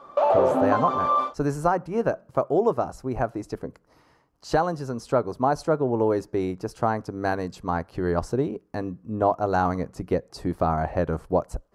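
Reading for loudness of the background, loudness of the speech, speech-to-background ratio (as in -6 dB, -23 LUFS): -22.0 LUFS, -26.5 LUFS, -4.5 dB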